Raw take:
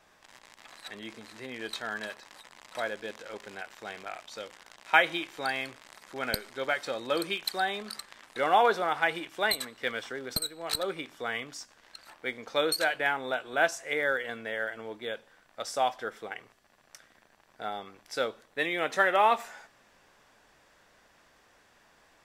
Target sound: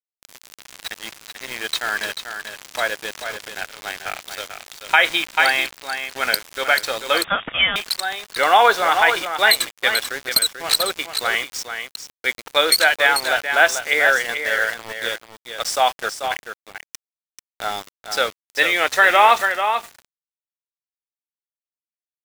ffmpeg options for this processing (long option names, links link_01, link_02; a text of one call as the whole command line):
ffmpeg -i in.wav -filter_complex "[0:a]highpass=frequency=1200:poles=1,aeval=exprs='val(0)*gte(abs(val(0)),0.00794)':channel_layout=same,aecho=1:1:439:0.398,asettb=1/sr,asplit=3[link_01][link_02][link_03];[link_01]atrim=end=7.244[link_04];[link_02]atrim=start=7.24:end=7.76,asetpts=PTS-STARTPTS,afade=type=in:duration=0.004:curve=qsin,afade=type=out:start_time=0.516:duration=0.004:curve=qsin,lowpass=frequency=3200:width_type=q:width=0.5098,lowpass=frequency=3200:width_type=q:width=0.6013,lowpass=frequency=3200:width_type=q:width=0.9,lowpass=frequency=3200:width_type=q:width=2.563,afreqshift=-3800[link_05];[link_03]atrim=start=7.756[link_06];[link_04][link_05]acrossfade=duration=0.004:curve1=hsin:curve2=qsin[link_07];[link_07][link_06]acrossfade=duration=0.004:curve1=qsin:curve2=hsin,alimiter=level_in=16dB:limit=-1dB:release=50:level=0:latency=1,volume=-1dB" out.wav